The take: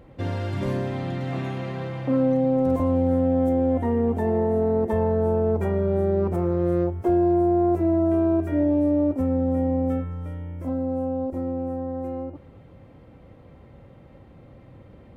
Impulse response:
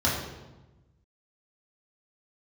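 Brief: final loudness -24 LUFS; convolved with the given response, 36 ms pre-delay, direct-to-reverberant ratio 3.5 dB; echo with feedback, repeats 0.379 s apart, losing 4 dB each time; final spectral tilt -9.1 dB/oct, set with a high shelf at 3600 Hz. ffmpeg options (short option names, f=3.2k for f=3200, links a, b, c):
-filter_complex "[0:a]highshelf=f=3.6k:g=6.5,aecho=1:1:379|758|1137|1516|1895|2274|2653|3032|3411:0.631|0.398|0.25|0.158|0.0994|0.0626|0.0394|0.0249|0.0157,asplit=2[a][b];[1:a]atrim=start_sample=2205,adelay=36[c];[b][c]afir=irnorm=-1:irlink=0,volume=-16.5dB[d];[a][d]amix=inputs=2:normalize=0,volume=-10.5dB"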